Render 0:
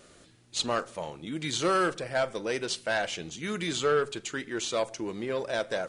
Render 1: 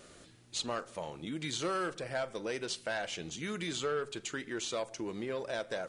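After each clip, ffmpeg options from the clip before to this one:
-af "acompressor=threshold=-38dB:ratio=2"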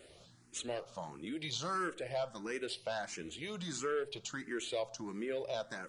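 -filter_complex "[0:a]asplit=2[a][b];[b]afreqshift=1.5[c];[a][c]amix=inputs=2:normalize=1"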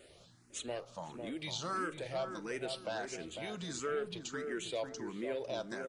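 -filter_complex "[0:a]asplit=2[a][b];[b]adelay=500,lowpass=f=960:p=1,volume=-5dB,asplit=2[c][d];[d]adelay=500,lowpass=f=960:p=1,volume=0.39,asplit=2[e][f];[f]adelay=500,lowpass=f=960:p=1,volume=0.39,asplit=2[g][h];[h]adelay=500,lowpass=f=960:p=1,volume=0.39,asplit=2[i][j];[j]adelay=500,lowpass=f=960:p=1,volume=0.39[k];[a][c][e][g][i][k]amix=inputs=6:normalize=0,volume=-1dB"

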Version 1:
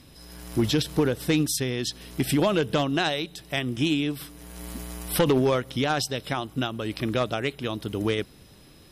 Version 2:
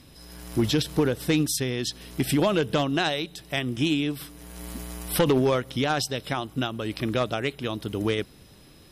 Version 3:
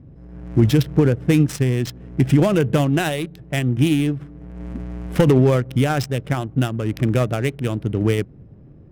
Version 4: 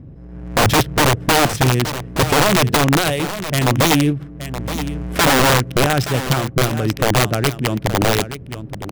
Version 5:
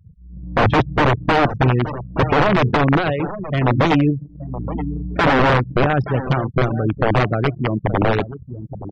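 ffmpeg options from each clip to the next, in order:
-af anull
-af "adynamicsmooth=sensitivity=5.5:basefreq=640,equalizer=f=125:t=o:w=1:g=8,equalizer=f=1k:t=o:w=1:g=-5,equalizer=f=4k:t=o:w=1:g=-9,volume=5.5dB"
-af "areverse,acompressor=mode=upward:threshold=-35dB:ratio=2.5,areverse,aeval=exprs='(mod(3.76*val(0)+1,2)-1)/3.76':c=same,aecho=1:1:873:0.266,volume=3.5dB"
-af "afftfilt=real='re*gte(hypot(re,im),0.1)':imag='im*gte(hypot(re,im),0.1)':win_size=1024:overlap=0.75,lowpass=2.3k,anlmdn=25.1"

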